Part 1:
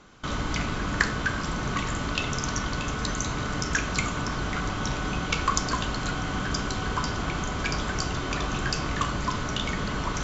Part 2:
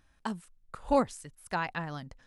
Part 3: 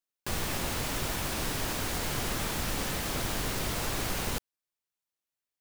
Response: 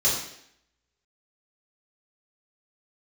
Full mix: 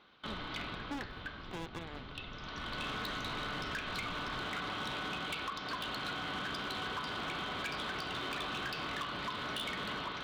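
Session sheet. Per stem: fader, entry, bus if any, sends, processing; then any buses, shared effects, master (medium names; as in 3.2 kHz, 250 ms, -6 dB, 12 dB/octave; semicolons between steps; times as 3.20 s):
-8.5 dB, 0.00 s, bus A, no send, level rider gain up to 5 dB; treble shelf 8.7 kHz -11 dB; auto duck -15 dB, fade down 1.80 s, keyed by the second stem
+0.5 dB, 0.00 s, bus A, no send, sliding maximum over 65 samples
-13.5 dB, 0.00 s, no bus, no send, steep low-pass 830 Hz 48 dB/octave; sliding maximum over 65 samples
bus A: 0.0 dB, high-pass 400 Hz 6 dB/octave; compression 3:1, threshold -36 dBFS, peak gain reduction 8.5 dB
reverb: none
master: resonant high shelf 5.2 kHz -12 dB, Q 3; overload inside the chain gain 33.5 dB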